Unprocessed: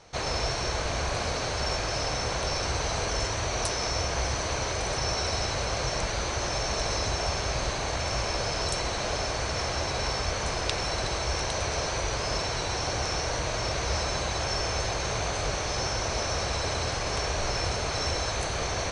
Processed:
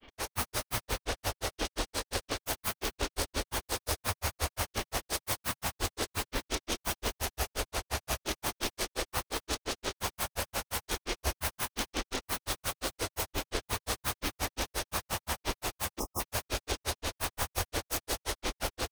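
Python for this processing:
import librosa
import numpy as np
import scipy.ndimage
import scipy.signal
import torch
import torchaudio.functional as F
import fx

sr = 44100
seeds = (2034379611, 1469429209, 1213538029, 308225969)

y = fx.self_delay(x, sr, depth_ms=0.63)
y = fx.high_shelf(y, sr, hz=5100.0, db=5.5)
y = fx.granulator(y, sr, seeds[0], grain_ms=104.0, per_s=5.7, spray_ms=100.0, spread_st=12)
y = fx.peak_eq(y, sr, hz=150.0, db=-11.5, octaves=0.43)
y = fx.notch(y, sr, hz=7300.0, q=12.0)
y = y + 10.0 ** (-6.0 / 20.0) * np.pad(y, (int(180 * sr / 1000.0), 0))[:len(y)]
y = fx.spec_box(y, sr, start_s=15.99, length_s=0.21, low_hz=1300.0, high_hz=5000.0, gain_db=-26)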